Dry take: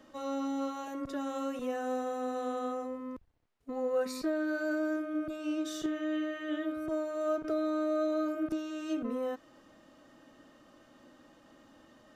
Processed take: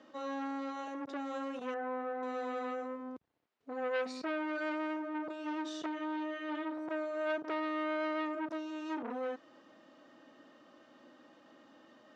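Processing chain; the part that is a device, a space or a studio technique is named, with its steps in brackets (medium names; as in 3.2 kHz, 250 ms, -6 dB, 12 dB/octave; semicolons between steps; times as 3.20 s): public-address speaker with an overloaded transformer (transformer saturation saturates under 1.3 kHz; band-pass 220–5200 Hz); low-pass 8.5 kHz; 1.74–2.23 s: Chebyshev low-pass 1.6 kHz, order 2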